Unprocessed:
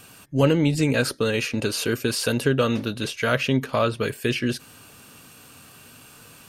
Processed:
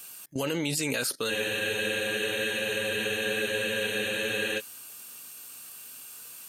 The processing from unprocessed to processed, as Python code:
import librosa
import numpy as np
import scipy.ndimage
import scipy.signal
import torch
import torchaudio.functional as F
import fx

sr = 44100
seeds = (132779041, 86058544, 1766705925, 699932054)

y = fx.riaa(x, sr, side='recording')
y = fx.level_steps(y, sr, step_db=16)
y = fx.spec_freeze(y, sr, seeds[0], at_s=1.32, hold_s=3.26)
y = y * 10.0 ** (3.0 / 20.0)